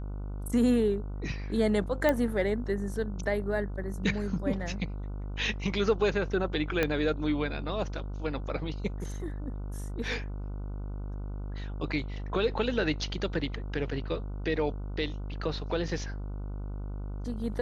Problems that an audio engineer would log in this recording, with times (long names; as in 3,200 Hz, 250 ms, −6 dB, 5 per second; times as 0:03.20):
mains buzz 50 Hz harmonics 30 −36 dBFS
0:02.09: click −13 dBFS
0:06.83: click −13 dBFS